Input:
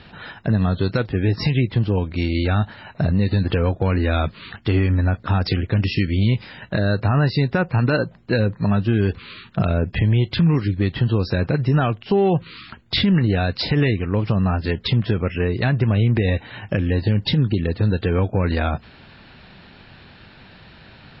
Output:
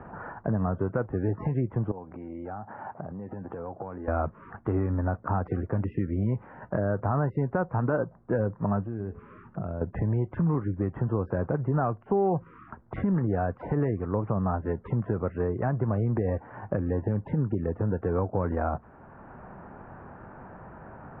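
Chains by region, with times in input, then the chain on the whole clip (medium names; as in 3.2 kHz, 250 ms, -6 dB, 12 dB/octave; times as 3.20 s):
1.91–4.08 s: high-pass 140 Hz + peaking EQ 790 Hz +8 dB 0.23 oct + compression 5:1, threshold -33 dBFS
8.84–9.81 s: peaking EQ 1.1 kHz -6 dB 2.5 oct + de-hum 213.5 Hz, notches 39 + compression 3:1, threshold -26 dBFS
whole clip: inverse Chebyshev low-pass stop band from 3.9 kHz, stop band 60 dB; bass shelf 430 Hz -10.5 dB; three bands compressed up and down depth 40%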